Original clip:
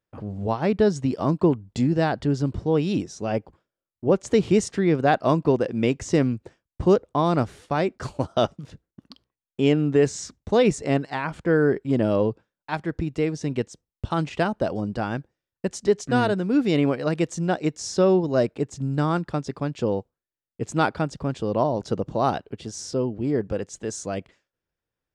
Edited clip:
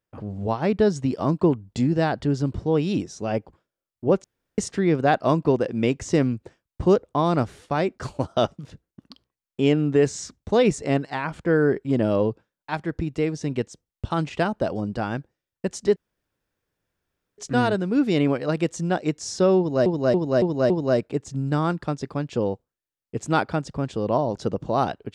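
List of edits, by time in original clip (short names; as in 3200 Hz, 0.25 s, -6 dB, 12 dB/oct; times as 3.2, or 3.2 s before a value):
4.24–4.58 room tone
15.96 insert room tone 1.42 s
18.16–18.44 loop, 5 plays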